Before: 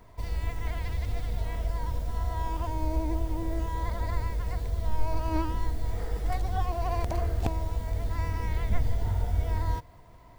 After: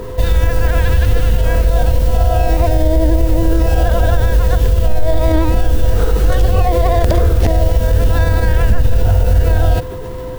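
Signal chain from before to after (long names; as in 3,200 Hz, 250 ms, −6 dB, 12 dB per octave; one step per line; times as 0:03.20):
steady tone 510 Hz −43 dBFS
formants moved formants −4 semitones
boost into a limiter +23 dB
level −2.5 dB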